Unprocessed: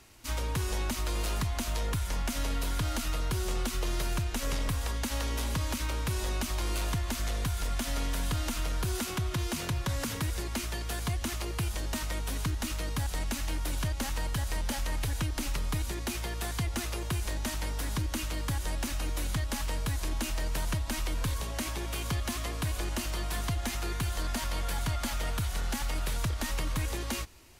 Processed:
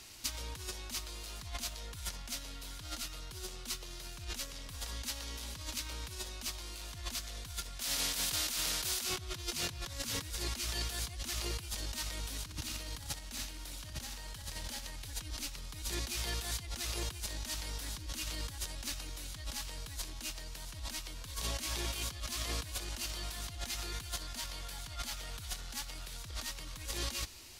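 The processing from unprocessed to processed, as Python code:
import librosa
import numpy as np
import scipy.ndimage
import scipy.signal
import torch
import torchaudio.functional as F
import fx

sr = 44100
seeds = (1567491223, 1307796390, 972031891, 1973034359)

y = fx.spectral_comp(x, sr, ratio=2.0, at=(7.8, 9.04))
y = fx.echo_feedback(y, sr, ms=61, feedback_pct=52, wet_db=-7.5, at=(12.42, 14.88), fade=0.02)
y = fx.high_shelf(y, sr, hz=2500.0, db=7.0)
y = fx.over_compress(y, sr, threshold_db=-34.0, ratio=-0.5)
y = fx.peak_eq(y, sr, hz=4400.0, db=6.0, octaves=1.3)
y = y * 10.0 ** (-6.5 / 20.0)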